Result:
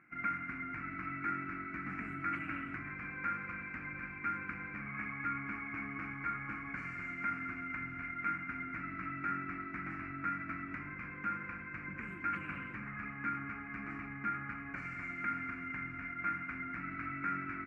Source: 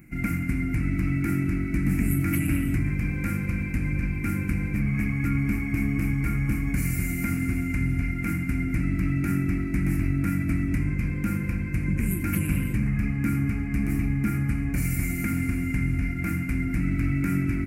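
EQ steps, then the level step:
resonant band-pass 1,300 Hz, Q 3.2
high-frequency loss of the air 150 metres
+5.5 dB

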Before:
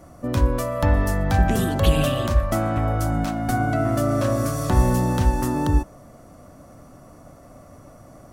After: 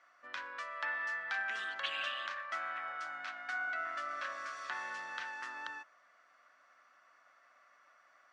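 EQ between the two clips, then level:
four-pole ladder band-pass 1,900 Hz, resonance 45%
high-frequency loss of the air 110 metres
high-shelf EQ 2,600 Hz +11 dB
+1.0 dB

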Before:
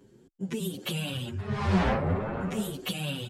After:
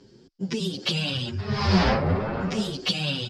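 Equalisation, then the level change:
low-pass with resonance 5,000 Hz, resonance Q 6.8
+4.0 dB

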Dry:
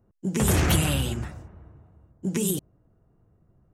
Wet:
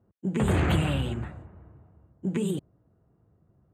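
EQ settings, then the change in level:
moving average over 8 samples
high-pass filter 62 Hz
−1.0 dB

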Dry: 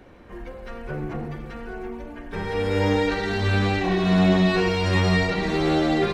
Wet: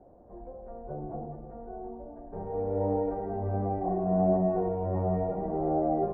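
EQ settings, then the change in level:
transistor ladder low-pass 770 Hz, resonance 65%
high-frequency loss of the air 270 metres
+1.5 dB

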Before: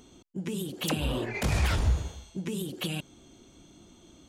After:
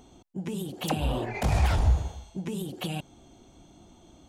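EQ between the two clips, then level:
low-shelf EQ 180 Hz +7 dB
parametric band 770 Hz +10.5 dB 0.74 octaves
−3.0 dB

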